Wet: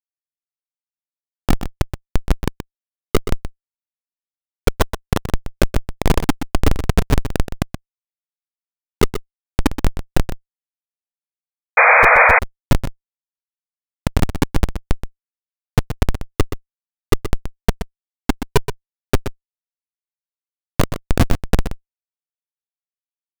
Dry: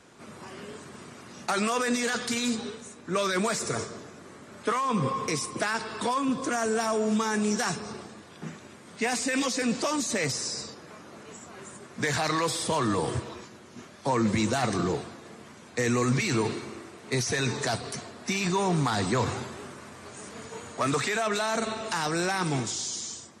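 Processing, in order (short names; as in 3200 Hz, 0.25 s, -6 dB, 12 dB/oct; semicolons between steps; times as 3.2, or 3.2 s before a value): sine-wave speech; low shelf 230 Hz +9 dB; comb 7.1 ms, depth 86%; compressor 4:1, threshold -31 dBFS, peak gain reduction 16.5 dB; non-linear reverb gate 0.47 s rising, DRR 8.5 dB; Schmitt trigger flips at -23 dBFS; on a send: echo 0.125 s -10 dB; on the sum: painted sound noise, 11.77–12.39, 460–2500 Hz -28 dBFS; maximiser +26 dB; gain -1 dB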